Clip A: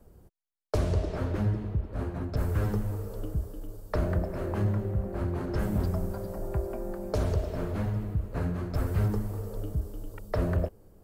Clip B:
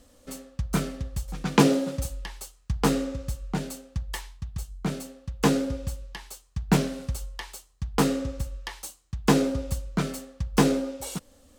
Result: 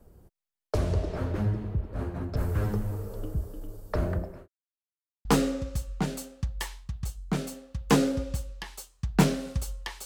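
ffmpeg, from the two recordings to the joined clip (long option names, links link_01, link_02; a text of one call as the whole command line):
ffmpeg -i cue0.wav -i cue1.wav -filter_complex "[0:a]apad=whole_dur=10.05,atrim=end=10.05,asplit=2[link_01][link_02];[link_01]atrim=end=4.48,asetpts=PTS-STARTPTS,afade=type=out:start_time=4.07:duration=0.41[link_03];[link_02]atrim=start=4.48:end=5.25,asetpts=PTS-STARTPTS,volume=0[link_04];[1:a]atrim=start=2.78:end=7.58,asetpts=PTS-STARTPTS,afade=type=in:duration=0.004:curve=hsin[link_05];[link_03][link_04][link_05]concat=n=3:v=0:a=1" out.wav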